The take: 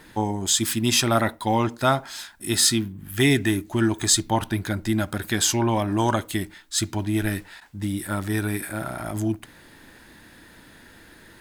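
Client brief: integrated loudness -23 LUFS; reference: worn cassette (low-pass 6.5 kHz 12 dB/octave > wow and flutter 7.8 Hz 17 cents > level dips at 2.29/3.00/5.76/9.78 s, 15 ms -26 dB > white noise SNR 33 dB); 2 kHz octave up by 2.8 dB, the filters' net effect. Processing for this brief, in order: low-pass 6.5 kHz 12 dB/octave; peaking EQ 2 kHz +3.5 dB; wow and flutter 7.8 Hz 17 cents; level dips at 2.29/3.00/5.76/9.78 s, 15 ms -26 dB; white noise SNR 33 dB; trim +0.5 dB

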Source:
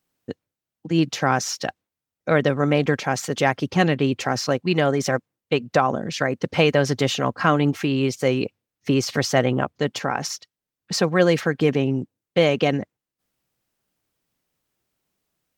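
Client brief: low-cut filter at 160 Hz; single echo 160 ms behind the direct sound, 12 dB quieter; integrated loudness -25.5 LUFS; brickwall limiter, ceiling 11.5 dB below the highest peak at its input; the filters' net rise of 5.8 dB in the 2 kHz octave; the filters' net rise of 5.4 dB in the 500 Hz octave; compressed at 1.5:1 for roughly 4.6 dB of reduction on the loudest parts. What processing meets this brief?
high-pass 160 Hz; peaking EQ 500 Hz +6 dB; peaking EQ 2 kHz +7 dB; compression 1.5:1, threshold -21 dBFS; peak limiter -15 dBFS; delay 160 ms -12 dB; trim +1 dB

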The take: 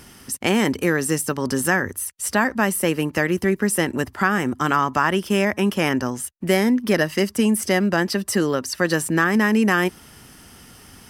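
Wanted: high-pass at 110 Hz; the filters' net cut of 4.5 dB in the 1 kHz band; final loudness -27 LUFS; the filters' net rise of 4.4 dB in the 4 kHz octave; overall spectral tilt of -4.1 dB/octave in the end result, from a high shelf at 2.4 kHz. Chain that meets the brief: high-pass 110 Hz; peaking EQ 1 kHz -7 dB; treble shelf 2.4 kHz +3.5 dB; peaking EQ 4 kHz +3.5 dB; trim -6 dB

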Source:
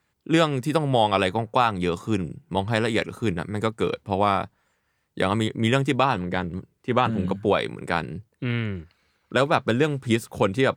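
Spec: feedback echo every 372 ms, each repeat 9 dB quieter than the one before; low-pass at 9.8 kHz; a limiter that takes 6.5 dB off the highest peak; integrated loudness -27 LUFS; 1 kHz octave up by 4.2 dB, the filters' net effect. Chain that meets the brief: low-pass 9.8 kHz; peaking EQ 1 kHz +5.5 dB; peak limiter -9.5 dBFS; feedback delay 372 ms, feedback 35%, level -9 dB; trim -2.5 dB

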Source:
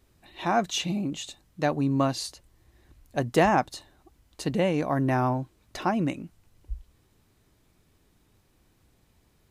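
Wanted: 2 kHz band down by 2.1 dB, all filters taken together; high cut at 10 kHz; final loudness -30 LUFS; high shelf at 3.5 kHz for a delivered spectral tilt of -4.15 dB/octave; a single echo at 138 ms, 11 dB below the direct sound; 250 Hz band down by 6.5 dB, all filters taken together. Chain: low-pass 10 kHz; peaking EQ 250 Hz -8.5 dB; peaking EQ 2 kHz -4.5 dB; treble shelf 3.5 kHz +6.5 dB; delay 138 ms -11 dB; trim -1 dB

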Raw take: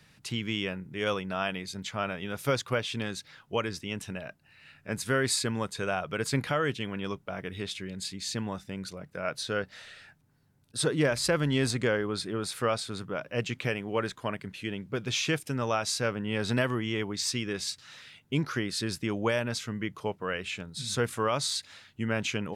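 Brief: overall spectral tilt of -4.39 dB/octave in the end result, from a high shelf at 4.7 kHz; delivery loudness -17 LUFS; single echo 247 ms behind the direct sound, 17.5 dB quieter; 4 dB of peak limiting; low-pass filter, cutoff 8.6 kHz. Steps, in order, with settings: low-pass 8.6 kHz; treble shelf 4.7 kHz -9 dB; peak limiter -19.5 dBFS; delay 247 ms -17.5 dB; trim +16.5 dB

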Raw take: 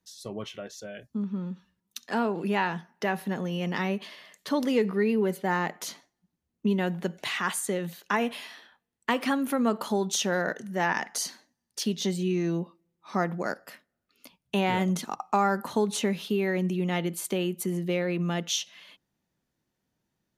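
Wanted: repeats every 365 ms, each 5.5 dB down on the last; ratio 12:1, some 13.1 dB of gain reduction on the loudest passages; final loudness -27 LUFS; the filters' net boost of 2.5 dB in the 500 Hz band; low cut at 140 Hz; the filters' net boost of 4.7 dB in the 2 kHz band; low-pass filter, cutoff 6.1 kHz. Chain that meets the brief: high-pass 140 Hz; low-pass 6.1 kHz; peaking EQ 500 Hz +3 dB; peaking EQ 2 kHz +5.5 dB; compression 12:1, threshold -31 dBFS; feedback delay 365 ms, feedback 53%, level -5.5 dB; trim +8.5 dB

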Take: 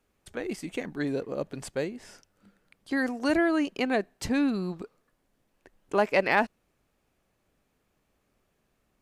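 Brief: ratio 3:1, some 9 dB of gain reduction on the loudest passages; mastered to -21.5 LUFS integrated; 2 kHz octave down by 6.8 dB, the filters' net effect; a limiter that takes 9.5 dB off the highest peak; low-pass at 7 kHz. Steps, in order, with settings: low-pass 7 kHz; peaking EQ 2 kHz -8.5 dB; compression 3:1, threshold -32 dBFS; trim +18.5 dB; peak limiter -11.5 dBFS

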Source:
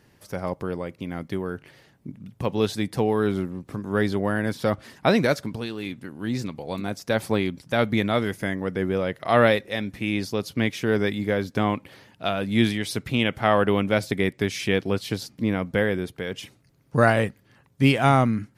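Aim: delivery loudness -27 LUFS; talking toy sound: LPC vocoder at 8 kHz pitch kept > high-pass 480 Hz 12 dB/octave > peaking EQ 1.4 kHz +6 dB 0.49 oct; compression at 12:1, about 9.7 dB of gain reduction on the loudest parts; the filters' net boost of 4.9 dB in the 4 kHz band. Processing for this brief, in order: peaking EQ 4 kHz +6 dB; compression 12:1, threshold -22 dBFS; LPC vocoder at 8 kHz pitch kept; high-pass 480 Hz 12 dB/octave; peaking EQ 1.4 kHz +6 dB 0.49 oct; trim +5 dB

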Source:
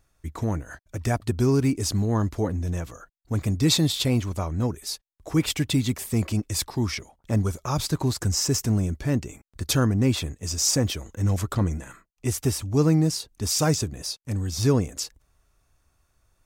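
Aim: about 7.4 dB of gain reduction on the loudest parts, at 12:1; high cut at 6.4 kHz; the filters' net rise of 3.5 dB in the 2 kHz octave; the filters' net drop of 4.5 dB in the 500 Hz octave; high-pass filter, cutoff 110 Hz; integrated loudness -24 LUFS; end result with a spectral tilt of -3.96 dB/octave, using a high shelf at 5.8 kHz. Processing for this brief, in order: high-pass 110 Hz; low-pass 6.4 kHz; peaking EQ 500 Hz -6 dB; peaking EQ 2 kHz +4 dB; treble shelf 5.8 kHz +6.5 dB; compression 12:1, threshold -24 dBFS; trim +6.5 dB

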